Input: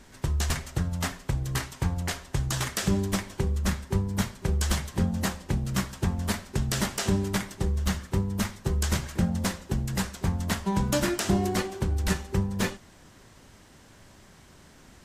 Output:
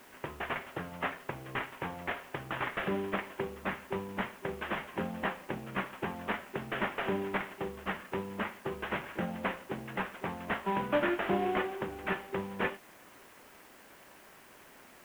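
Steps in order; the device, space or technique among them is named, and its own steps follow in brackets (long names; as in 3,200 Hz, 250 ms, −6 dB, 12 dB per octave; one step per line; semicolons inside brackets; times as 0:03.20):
army field radio (band-pass filter 360–2,900 Hz; variable-slope delta modulation 16 kbit/s; white noise bed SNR 25 dB)
level +1 dB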